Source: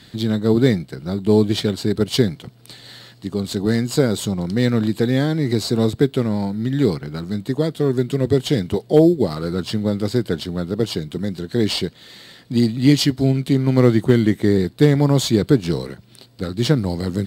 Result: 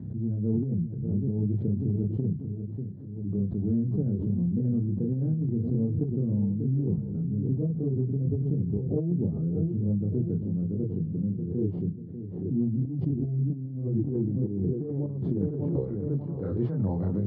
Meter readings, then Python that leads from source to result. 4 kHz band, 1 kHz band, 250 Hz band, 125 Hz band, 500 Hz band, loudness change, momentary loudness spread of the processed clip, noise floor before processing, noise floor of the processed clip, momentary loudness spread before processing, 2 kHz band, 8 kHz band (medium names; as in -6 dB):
under -40 dB, under -20 dB, -9.5 dB, -5.5 dB, -15.5 dB, -9.5 dB, 4 LU, -47 dBFS, -37 dBFS, 11 LU, under -35 dB, under -40 dB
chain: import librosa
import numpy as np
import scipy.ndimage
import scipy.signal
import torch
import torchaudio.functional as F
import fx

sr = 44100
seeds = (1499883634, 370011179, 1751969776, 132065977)

y = scipy.signal.sosfilt(scipy.signal.butter(2, 4700.0, 'lowpass', fs=sr, output='sos'), x)
y = fx.echo_filtered(y, sr, ms=592, feedback_pct=45, hz=1300.0, wet_db=-10.5)
y = fx.chorus_voices(y, sr, voices=6, hz=0.61, base_ms=30, depth_ms=1.3, mix_pct=45)
y = fx.peak_eq(y, sr, hz=3000.0, db=-8.5, octaves=2.4)
y = fx.filter_sweep_lowpass(y, sr, from_hz=250.0, to_hz=1000.0, start_s=13.94, end_s=16.49, q=0.83)
y = fx.dynamic_eq(y, sr, hz=160.0, q=3.9, threshold_db=-31.0, ratio=4.0, max_db=4)
y = fx.over_compress(y, sr, threshold_db=-20.0, ratio=-0.5)
y = scipy.signal.sosfilt(scipy.signal.butter(4, 71.0, 'highpass', fs=sr, output='sos'), y)
y = fx.pre_swell(y, sr, db_per_s=45.0)
y = F.gain(torch.from_numpy(y), -6.0).numpy()